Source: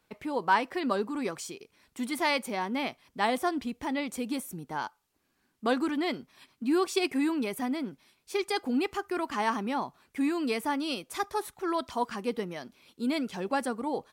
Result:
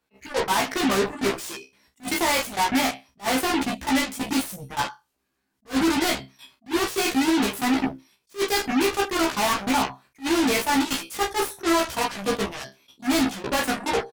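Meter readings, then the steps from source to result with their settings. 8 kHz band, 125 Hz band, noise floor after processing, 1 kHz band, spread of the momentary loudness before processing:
+14.0 dB, +8.5 dB, -76 dBFS, +5.5 dB, 9 LU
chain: spectral noise reduction 11 dB; level held to a coarse grid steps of 16 dB; flutter echo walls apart 5.2 m, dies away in 0.23 s; sine folder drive 9 dB, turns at -19 dBFS; Chebyshev shaper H 7 -9 dB, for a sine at -18.5 dBFS; doubling 15 ms -2.5 dB; attacks held to a fixed rise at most 340 dB/s

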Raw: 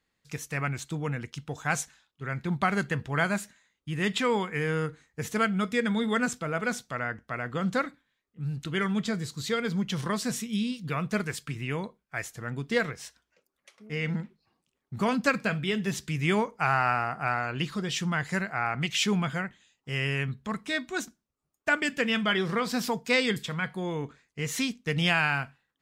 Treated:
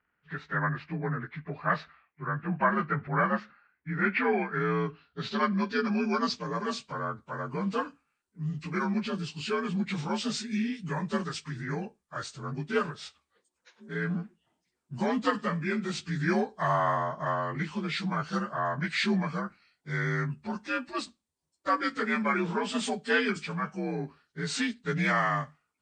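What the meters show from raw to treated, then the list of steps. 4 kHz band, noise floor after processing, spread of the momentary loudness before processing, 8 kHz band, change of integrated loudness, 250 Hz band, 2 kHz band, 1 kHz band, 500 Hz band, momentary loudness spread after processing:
-5.0 dB, -82 dBFS, 11 LU, -7.0 dB, -1.5 dB, -0.5 dB, -2.5 dB, +1.0 dB, -1.0 dB, 10 LU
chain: frequency axis rescaled in octaves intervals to 86%; low-pass sweep 1.8 kHz -> 8.9 kHz, 3.94–6.95 s

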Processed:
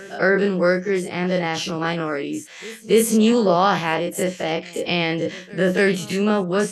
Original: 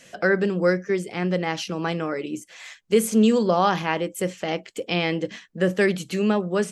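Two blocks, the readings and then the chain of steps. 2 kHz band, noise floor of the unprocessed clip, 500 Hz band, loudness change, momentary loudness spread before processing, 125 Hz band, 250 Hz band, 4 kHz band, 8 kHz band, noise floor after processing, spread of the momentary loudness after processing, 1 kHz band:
+4.0 dB, -53 dBFS, +3.0 dB, +3.0 dB, 11 LU, +2.5 dB, +2.0 dB, +4.5 dB, +5.0 dB, -40 dBFS, 9 LU, +3.5 dB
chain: every event in the spectrogram widened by 60 ms; pre-echo 280 ms -22 dB

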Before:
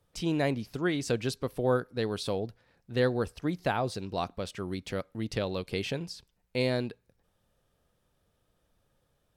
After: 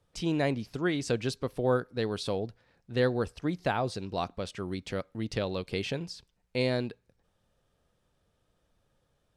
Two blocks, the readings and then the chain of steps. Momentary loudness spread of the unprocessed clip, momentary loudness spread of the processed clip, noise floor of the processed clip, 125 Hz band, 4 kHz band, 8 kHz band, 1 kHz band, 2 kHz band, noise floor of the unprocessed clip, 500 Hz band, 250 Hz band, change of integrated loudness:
8 LU, 9 LU, -75 dBFS, 0.0 dB, 0.0 dB, -1.0 dB, 0.0 dB, 0.0 dB, -74 dBFS, 0.0 dB, 0.0 dB, 0.0 dB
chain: low-pass 9.4 kHz 12 dB/octave

